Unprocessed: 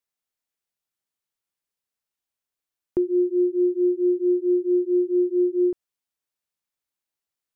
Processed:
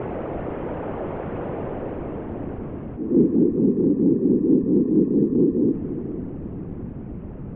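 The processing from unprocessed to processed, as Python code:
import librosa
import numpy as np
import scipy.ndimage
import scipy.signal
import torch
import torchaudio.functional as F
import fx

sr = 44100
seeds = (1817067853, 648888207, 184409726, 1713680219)

y = fx.delta_mod(x, sr, bps=16000, step_db=-25.0)
y = fx.auto_swell(y, sr, attack_ms=157.0)
y = fx.whisperise(y, sr, seeds[0])
y = fx.filter_sweep_lowpass(y, sr, from_hz=500.0, to_hz=200.0, start_s=1.47, end_s=3.49, q=1.2)
y = fx.transient(y, sr, attack_db=-4, sustain_db=1)
y = fx.echo_diffused(y, sr, ms=506, feedback_pct=44, wet_db=-11.5)
y = y * librosa.db_to_amplitude(9.0)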